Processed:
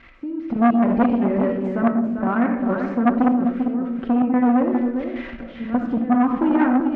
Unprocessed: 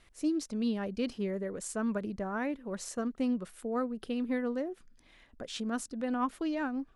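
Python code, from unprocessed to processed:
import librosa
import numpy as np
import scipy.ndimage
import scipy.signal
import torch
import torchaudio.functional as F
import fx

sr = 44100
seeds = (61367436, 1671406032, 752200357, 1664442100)

p1 = x + 0.5 * 10.0 ** (-37.0 / 20.0) * np.diff(np.sign(x), prepend=np.sign(x[:1]))
p2 = fx.recorder_agc(p1, sr, target_db=-24.0, rise_db_per_s=26.0, max_gain_db=30)
p3 = scipy.signal.sosfilt(scipy.signal.butter(4, 2200.0, 'lowpass', fs=sr, output='sos'), p2)
p4 = fx.peak_eq(p3, sr, hz=230.0, db=13.5, octaves=0.37)
p5 = fx.level_steps(p4, sr, step_db=10)
p6 = p4 + (p5 * librosa.db_to_amplitude(1.5))
p7 = fx.notch_comb(p6, sr, f0_hz=210.0)
p8 = fx.step_gate(p7, sr, bpm=128, pattern='x...xx.xxxxxx.x', floor_db=-12.0, edge_ms=4.5)
p9 = p8 + fx.echo_single(p8, sr, ms=396, db=-7.0, dry=0)
p10 = fx.rev_freeverb(p9, sr, rt60_s=0.85, hf_ratio=0.35, predelay_ms=20, drr_db=3.0)
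p11 = fx.transformer_sat(p10, sr, knee_hz=750.0)
y = p11 * librosa.db_to_amplitude(5.0)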